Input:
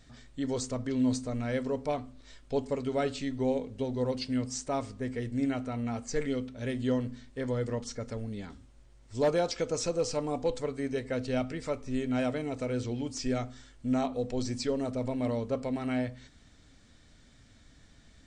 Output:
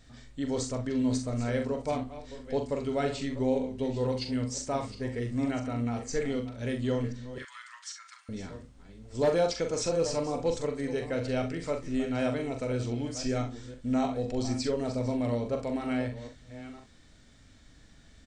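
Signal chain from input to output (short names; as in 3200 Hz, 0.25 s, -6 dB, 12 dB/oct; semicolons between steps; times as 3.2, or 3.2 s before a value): reverse delay 0.509 s, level -13 dB; 7.38–8.29 steep high-pass 1100 Hz 48 dB/oct; early reflections 42 ms -6.5 dB, 65 ms -13 dB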